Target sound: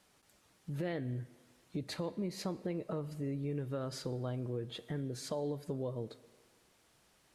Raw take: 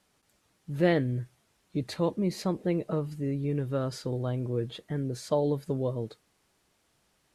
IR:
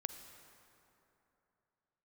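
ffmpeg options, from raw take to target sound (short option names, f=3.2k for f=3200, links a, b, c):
-filter_complex "[0:a]alimiter=limit=-21dB:level=0:latency=1:release=148,acompressor=threshold=-42dB:ratio=2,asplit=2[a][b];[1:a]atrim=start_sample=2205,asetrate=83790,aresample=44100,lowshelf=f=160:g=-10[c];[b][c]afir=irnorm=-1:irlink=0,volume=3dB[d];[a][d]amix=inputs=2:normalize=0,volume=-2dB"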